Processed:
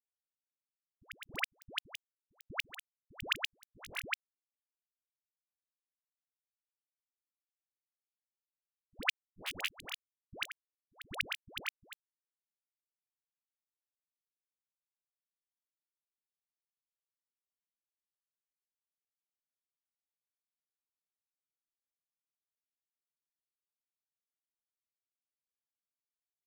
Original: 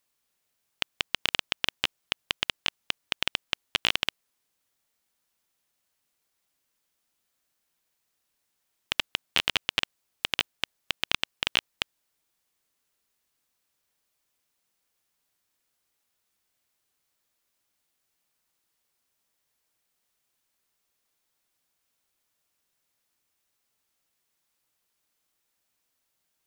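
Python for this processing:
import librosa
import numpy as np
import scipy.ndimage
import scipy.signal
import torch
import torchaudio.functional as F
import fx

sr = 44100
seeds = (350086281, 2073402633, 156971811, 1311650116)

y = fx.pitch_ramps(x, sr, semitones=-5.0, every_ms=151)
y = fx.auto_swell(y, sr, attack_ms=202.0)
y = fx.quant_dither(y, sr, seeds[0], bits=6, dither='none')
y = fx.dispersion(y, sr, late='highs', ms=101.0, hz=650.0)
y = F.gain(torch.from_numpy(y), 3.5).numpy()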